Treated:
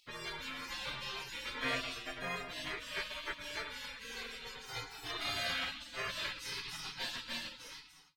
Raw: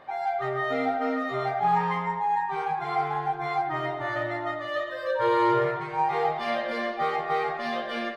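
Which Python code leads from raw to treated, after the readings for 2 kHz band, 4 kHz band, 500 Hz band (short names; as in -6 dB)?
-7.5 dB, +3.0 dB, -20.5 dB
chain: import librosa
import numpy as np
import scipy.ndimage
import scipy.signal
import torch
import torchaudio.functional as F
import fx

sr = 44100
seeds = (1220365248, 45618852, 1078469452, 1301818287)

y = fx.fade_out_tail(x, sr, length_s=0.92)
y = fx.spec_gate(y, sr, threshold_db=-30, keep='weak')
y = y * librosa.db_to_amplitude(11.0)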